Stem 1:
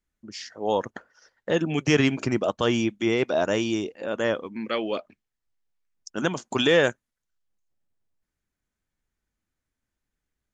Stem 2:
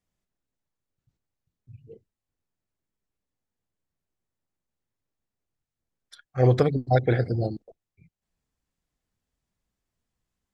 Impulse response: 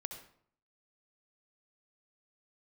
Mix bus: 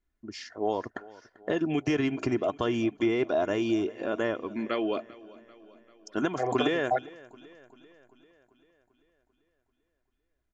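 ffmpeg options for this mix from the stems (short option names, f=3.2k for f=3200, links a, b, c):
-filter_complex "[0:a]acompressor=threshold=-26dB:ratio=4,volume=1.5dB,asplit=3[a][b][c];[b]volume=-20.5dB[d];[1:a]acrossover=split=550 2800:gain=0.0794 1 0.0891[e][f][g];[e][f][g]amix=inputs=3:normalize=0,acompressor=threshold=-26dB:ratio=2,volume=1.5dB[h];[c]apad=whole_len=464762[i];[h][i]sidechaingate=range=-33dB:threshold=-51dB:ratio=16:detection=peak[j];[d]aecho=0:1:392|784|1176|1568|1960|2352|2744|3136|3528:1|0.58|0.336|0.195|0.113|0.0656|0.0381|0.0221|0.0128[k];[a][j][k]amix=inputs=3:normalize=0,highshelf=f=3.2k:g=-11,aecho=1:1:2.9:0.45"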